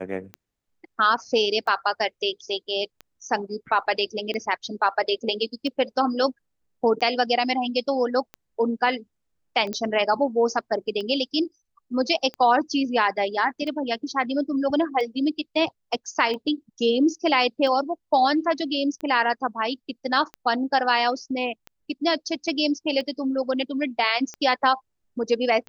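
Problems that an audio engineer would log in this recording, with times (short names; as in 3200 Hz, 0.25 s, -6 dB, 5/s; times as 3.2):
tick 45 rpm -22 dBFS
9.73 pop -15 dBFS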